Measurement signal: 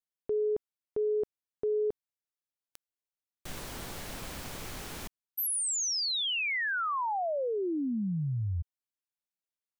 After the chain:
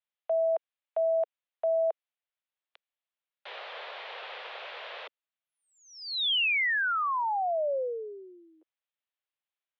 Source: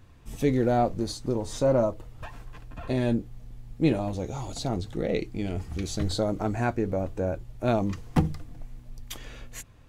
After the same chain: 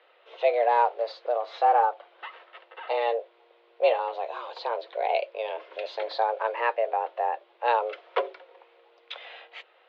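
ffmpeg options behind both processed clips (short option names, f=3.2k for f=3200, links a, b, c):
-af "crystalizer=i=8.5:c=0,aemphasis=mode=reproduction:type=riaa,highpass=f=300:t=q:w=0.5412,highpass=f=300:t=q:w=1.307,lowpass=f=3.4k:t=q:w=0.5176,lowpass=f=3.4k:t=q:w=0.7071,lowpass=f=3.4k:t=q:w=1.932,afreqshift=230,volume=-1.5dB"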